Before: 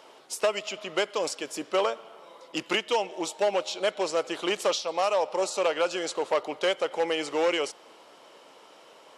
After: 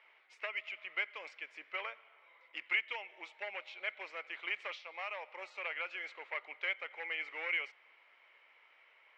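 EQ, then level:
four-pole ladder band-pass 2,300 Hz, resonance 75%
spectral tilt −5 dB per octave
high-shelf EQ 3,000 Hz −10 dB
+9.0 dB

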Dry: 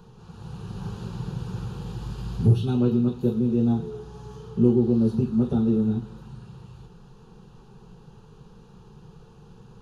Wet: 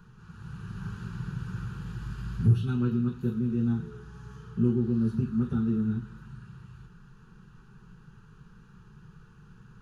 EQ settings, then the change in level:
drawn EQ curve 170 Hz 0 dB, 360 Hz −6 dB, 640 Hz −18 dB, 1,500 Hz +9 dB, 3,700 Hz −6 dB, 6,400 Hz −3 dB
−3.0 dB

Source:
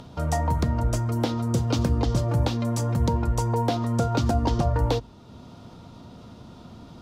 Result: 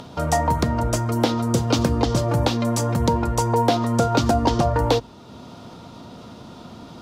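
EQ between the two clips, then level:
low-shelf EQ 130 Hz −11.5 dB
+7.5 dB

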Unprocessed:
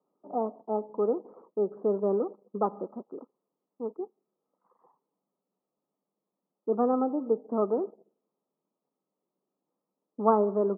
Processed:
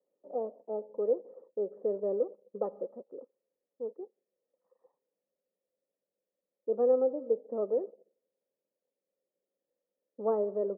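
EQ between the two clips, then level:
formant resonators in series e
+6.5 dB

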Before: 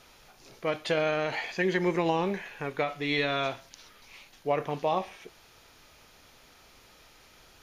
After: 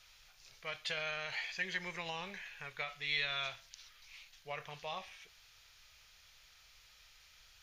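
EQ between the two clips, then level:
guitar amp tone stack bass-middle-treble 10-0-10
parametric band 890 Hz −4.5 dB 1.2 octaves
parametric band 11,000 Hz −11 dB 0.85 octaves
0.0 dB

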